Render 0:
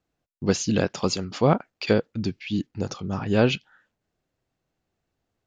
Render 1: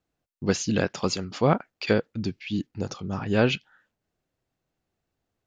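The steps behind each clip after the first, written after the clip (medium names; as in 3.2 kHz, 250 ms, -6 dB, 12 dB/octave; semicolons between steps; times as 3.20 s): dynamic bell 1.8 kHz, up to +4 dB, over -38 dBFS, Q 1.3; trim -2 dB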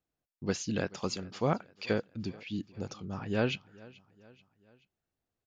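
feedback delay 432 ms, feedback 51%, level -22.5 dB; trim -8 dB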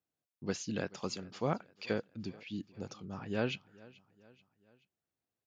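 high-pass 97 Hz; trim -4 dB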